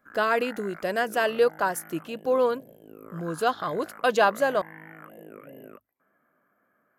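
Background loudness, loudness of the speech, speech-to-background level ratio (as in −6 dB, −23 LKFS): −46.0 LKFS, −26.0 LKFS, 20.0 dB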